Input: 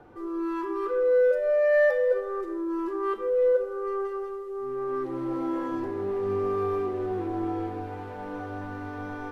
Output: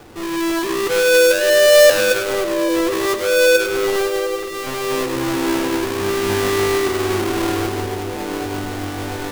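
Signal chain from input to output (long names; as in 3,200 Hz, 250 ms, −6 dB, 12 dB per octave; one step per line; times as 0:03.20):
each half-wave held at its own peak
echo with a time of its own for lows and highs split 620 Hz, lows 788 ms, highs 102 ms, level −9.5 dB
level +5.5 dB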